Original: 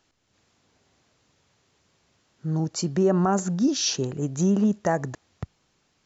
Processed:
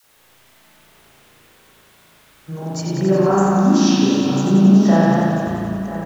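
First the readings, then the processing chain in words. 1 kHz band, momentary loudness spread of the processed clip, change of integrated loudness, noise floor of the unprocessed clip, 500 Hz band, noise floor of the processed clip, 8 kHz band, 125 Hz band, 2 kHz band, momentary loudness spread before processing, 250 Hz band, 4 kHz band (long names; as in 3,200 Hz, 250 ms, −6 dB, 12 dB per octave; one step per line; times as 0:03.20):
+9.0 dB, 14 LU, +9.0 dB, −70 dBFS, +8.0 dB, −53 dBFS, can't be measured, +9.0 dB, +9.5 dB, 18 LU, +10.5 dB, +3.5 dB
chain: in parallel at −3 dB: bit-depth reduction 8 bits, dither triangular
on the sum: all-pass dispersion lows, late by 41 ms, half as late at 600 Hz
on a send: single-tap delay 991 ms −12 dB
on the sum: spring reverb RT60 2.1 s, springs 36 ms, chirp 60 ms, DRR −8.5 dB
feedback echo with a swinging delay time 91 ms, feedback 76%, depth 62 cents, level −6 dB
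level −6.5 dB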